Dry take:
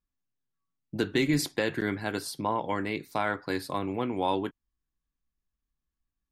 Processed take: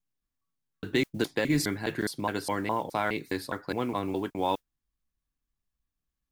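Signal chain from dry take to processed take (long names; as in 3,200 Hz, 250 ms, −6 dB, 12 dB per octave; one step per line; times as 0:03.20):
slices reordered back to front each 207 ms, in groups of 2
noise that follows the level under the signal 30 dB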